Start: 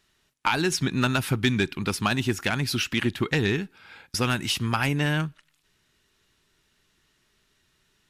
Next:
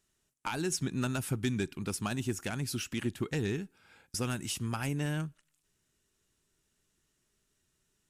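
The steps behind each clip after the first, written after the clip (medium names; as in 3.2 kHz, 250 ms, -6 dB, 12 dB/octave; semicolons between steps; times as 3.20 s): graphic EQ 1/2/4/8 kHz -4/-5/-7/+7 dB; trim -7.5 dB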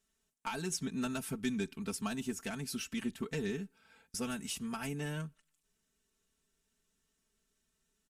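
comb 4.5 ms, depth 89%; trim -6 dB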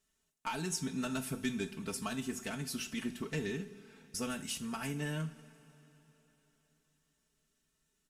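two-slope reverb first 0.38 s, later 3.9 s, from -18 dB, DRR 7 dB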